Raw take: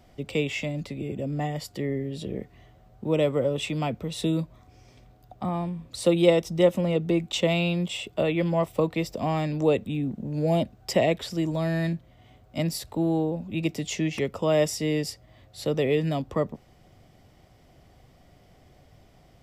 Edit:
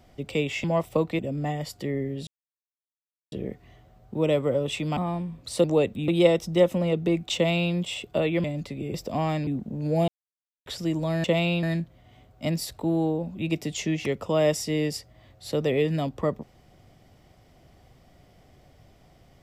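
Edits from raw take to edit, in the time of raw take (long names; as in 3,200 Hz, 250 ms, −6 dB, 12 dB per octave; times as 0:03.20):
0:00.64–0:01.14: swap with 0:08.47–0:09.02
0:02.22: splice in silence 1.05 s
0:03.87–0:05.44: remove
0:07.38–0:07.77: duplicate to 0:11.76
0:09.55–0:09.99: move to 0:06.11
0:10.60–0:11.18: silence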